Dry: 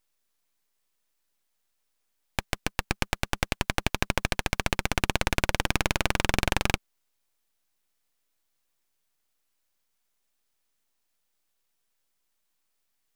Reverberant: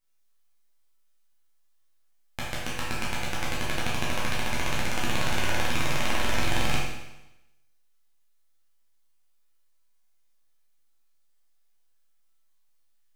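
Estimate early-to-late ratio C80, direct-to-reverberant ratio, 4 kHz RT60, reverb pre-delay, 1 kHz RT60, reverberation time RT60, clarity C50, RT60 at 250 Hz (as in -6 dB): 3.0 dB, -7.0 dB, 0.95 s, 8 ms, 0.95 s, 0.95 s, 0.0 dB, 0.95 s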